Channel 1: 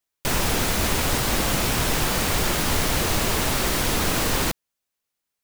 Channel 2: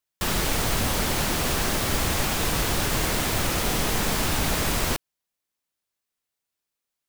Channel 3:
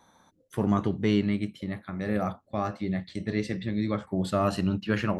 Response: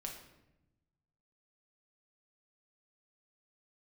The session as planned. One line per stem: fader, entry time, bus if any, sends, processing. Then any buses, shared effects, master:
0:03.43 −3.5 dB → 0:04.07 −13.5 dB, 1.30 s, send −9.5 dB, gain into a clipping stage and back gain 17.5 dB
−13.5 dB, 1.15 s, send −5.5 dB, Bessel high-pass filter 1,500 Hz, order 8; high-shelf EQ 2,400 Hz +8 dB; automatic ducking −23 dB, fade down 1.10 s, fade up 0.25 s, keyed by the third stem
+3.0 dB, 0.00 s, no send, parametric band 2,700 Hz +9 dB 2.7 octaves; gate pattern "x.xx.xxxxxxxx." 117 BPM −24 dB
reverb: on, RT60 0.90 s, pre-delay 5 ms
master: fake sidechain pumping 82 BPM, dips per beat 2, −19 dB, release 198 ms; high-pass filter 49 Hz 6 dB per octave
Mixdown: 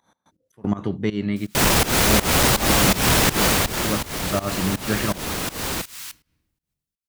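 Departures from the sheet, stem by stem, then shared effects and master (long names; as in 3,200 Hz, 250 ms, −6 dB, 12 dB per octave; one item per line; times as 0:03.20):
stem 1 −3.5 dB → +6.5 dB
stem 3: missing parametric band 2,700 Hz +9 dB 2.7 octaves
reverb return −6.0 dB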